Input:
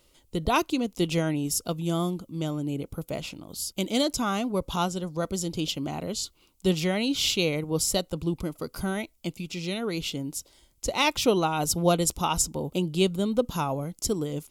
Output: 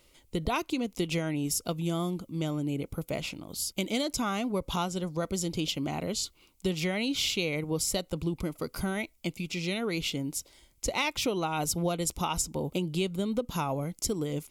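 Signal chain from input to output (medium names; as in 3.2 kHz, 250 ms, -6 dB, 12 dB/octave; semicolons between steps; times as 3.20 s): peaking EQ 2.2 kHz +6 dB 0.39 oct; compression 6:1, threshold -26 dBFS, peak gain reduction 10 dB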